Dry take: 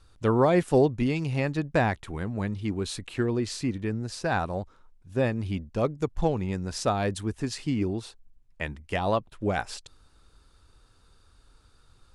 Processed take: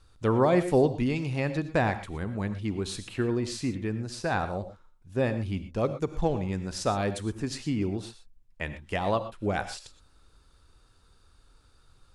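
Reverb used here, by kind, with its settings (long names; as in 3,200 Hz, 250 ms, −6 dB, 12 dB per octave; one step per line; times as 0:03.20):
reverb whose tail is shaped and stops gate 140 ms rising, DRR 10.5 dB
level −1.5 dB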